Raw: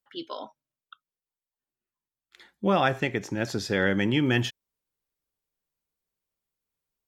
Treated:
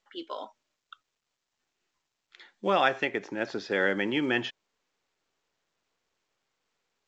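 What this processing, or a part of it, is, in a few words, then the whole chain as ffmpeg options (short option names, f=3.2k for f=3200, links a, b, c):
telephone: -filter_complex "[0:a]asettb=1/sr,asplit=3[a][b][c];[a]atrim=end=0.394[d];[b]atrim=start=0.39:end=3.05,asetpts=PTS-STARTPTS,afade=t=in:d=0.004:c=qsin,afade=t=out:st=2.656:d=0.004:c=qsin,aemphasis=mode=production:type=75fm[e];[c]atrim=start=3.046[f];[d][e]acrossfade=d=0.004:c1=hsin:c2=qsin[g];[g][f]acrossfade=d=0.004:c1=qsin:c2=hsin,highpass=320,lowpass=3.2k" -ar 16000 -c:a pcm_mulaw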